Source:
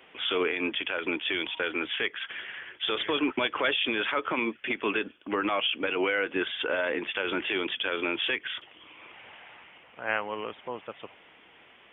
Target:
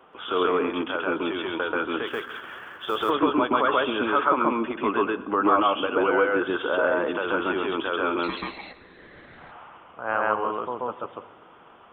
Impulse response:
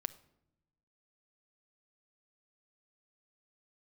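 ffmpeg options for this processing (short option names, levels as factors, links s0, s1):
-filter_complex "[0:a]highshelf=f=1600:t=q:w=3:g=-8,asettb=1/sr,asplit=3[s0][s1][s2];[s0]atrim=end=8.234[s3];[s1]atrim=start=8.23:end=9.38,asetpts=PTS-STARTPTS,afade=t=in:d=0.004:c=qsin,afade=t=out:st=1.146:d=0.004:c=qsin,aeval=exprs='val(0)*sin(2*PI*700*n/s)':c=same[s4];[s2]atrim=start=9.376[s5];[s3][s4]acrossfade=d=0.004:c1=hsin:c2=qsin[s6];[s6][s5]acrossfade=d=0.004:c1=qsin:c2=hsin,asplit=2[s7][s8];[1:a]atrim=start_sample=2205,asetrate=22050,aresample=44100,adelay=134[s9];[s8][s9]afir=irnorm=-1:irlink=0,volume=0.841[s10];[s7][s10]amix=inputs=2:normalize=0,asplit=3[s11][s12][s13];[s11]afade=t=out:st=2.06:d=0.02[s14];[s12]acrusher=bits=7:mode=log:mix=0:aa=0.000001,afade=t=in:st=2.06:d=0.02,afade=t=out:st=3.09:d=0.02[s15];[s13]afade=t=in:st=3.09:d=0.02[s16];[s14][s15][s16]amix=inputs=3:normalize=0,volume=1.33"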